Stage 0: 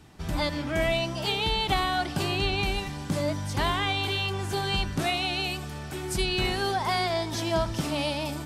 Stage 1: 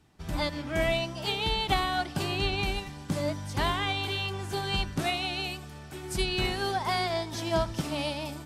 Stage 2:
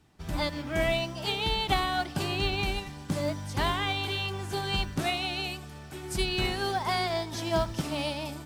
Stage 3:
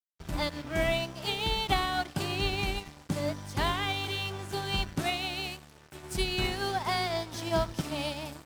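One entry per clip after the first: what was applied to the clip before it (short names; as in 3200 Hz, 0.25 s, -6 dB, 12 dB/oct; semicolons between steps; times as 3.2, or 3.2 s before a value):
upward expander 1.5:1, over -43 dBFS
modulation noise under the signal 33 dB
crossover distortion -42.5 dBFS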